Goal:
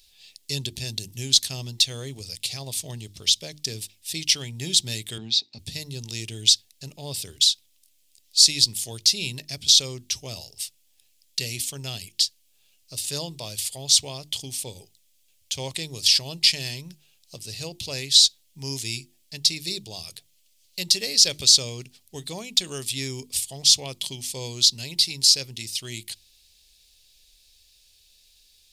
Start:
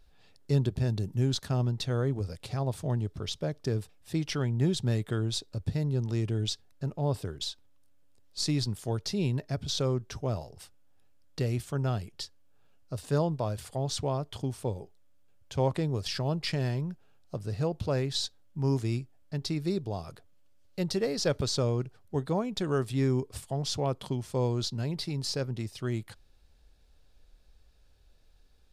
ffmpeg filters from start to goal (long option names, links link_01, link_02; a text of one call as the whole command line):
ffmpeg -i in.wav -filter_complex "[0:a]asettb=1/sr,asplit=3[link_01][link_02][link_03];[link_01]atrim=end=5.184[link_04];[link_02]atrim=start=5.18:end=5.59,asetpts=PTS-STARTPTS,afade=type=in:duration=0.004:curve=qsin,afade=type=out:start_time=0.406:duration=0.004:curve=qsin,highpass=140,equalizer=frequency=230:width_type=q:width=4:gain=7,equalizer=frequency=330:width_type=q:width=4:gain=-4,equalizer=frequency=520:width_type=q:width=4:gain=-9,equalizer=frequency=820:width_type=q:width=4:gain=10,equalizer=frequency=1400:width_type=q:width=4:gain=-5,equalizer=frequency=3100:width_type=q:width=4:gain=-8,lowpass=frequency=4400:width=0.5412,lowpass=frequency=4400:width=1.3066[link_05];[link_03]atrim=start=5.586[link_06];[link_04][link_05]acrossfade=duration=0.004:curve1=hsin:curve2=qsin[link_07];[link_07][link_06]acrossfade=duration=0.004:curve1=qsin:curve2=hsin,bandreject=frequency=50:width_type=h:width=6,bandreject=frequency=100:width_type=h:width=6,bandreject=frequency=150:width_type=h:width=6,bandreject=frequency=200:width_type=h:width=6,bandreject=frequency=250:width_type=h:width=6,bandreject=frequency=300:width_type=h:width=6,bandreject=frequency=350:width_type=h:width=6,aexciter=amount=13.7:drive=5.5:freq=2200,volume=-7dB" out.wav